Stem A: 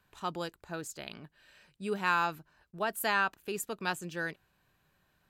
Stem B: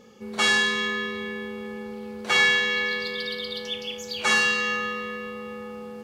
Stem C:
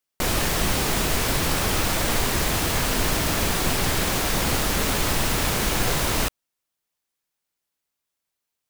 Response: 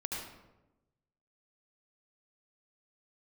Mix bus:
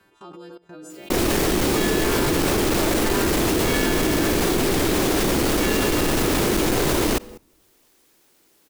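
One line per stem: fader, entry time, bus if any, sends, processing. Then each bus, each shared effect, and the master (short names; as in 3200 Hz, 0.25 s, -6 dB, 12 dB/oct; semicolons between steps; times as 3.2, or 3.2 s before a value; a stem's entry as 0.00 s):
-2.0 dB, 0.00 s, send -9.5 dB, frequency quantiser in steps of 2 st; LPF 2700 Hz 6 dB/oct; three-band squash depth 40%
-8.0 dB, 1.35 s, no send, dry
+2.0 dB, 0.90 s, send -19 dB, hard clip -21 dBFS, distortion -11 dB; fast leveller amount 50%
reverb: on, RT60 1.0 s, pre-delay 68 ms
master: bell 340 Hz +13.5 dB 1.1 oct; level quantiser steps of 20 dB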